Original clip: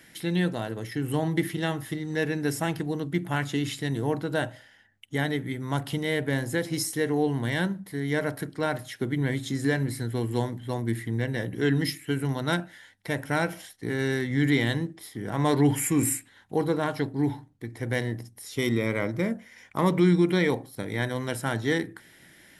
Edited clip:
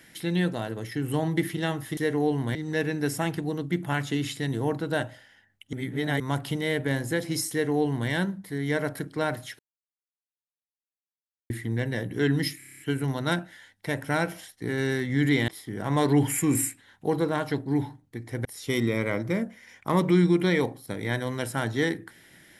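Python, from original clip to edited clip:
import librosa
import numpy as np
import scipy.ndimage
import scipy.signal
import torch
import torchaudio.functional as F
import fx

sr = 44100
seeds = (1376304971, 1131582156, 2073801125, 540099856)

y = fx.edit(x, sr, fx.reverse_span(start_s=5.15, length_s=0.47),
    fx.duplicate(start_s=6.93, length_s=0.58, to_s=1.97),
    fx.silence(start_s=9.01, length_s=1.91),
    fx.stutter(start_s=12.0, slice_s=0.03, count=8),
    fx.cut(start_s=14.69, length_s=0.27),
    fx.cut(start_s=17.93, length_s=0.41), tone=tone)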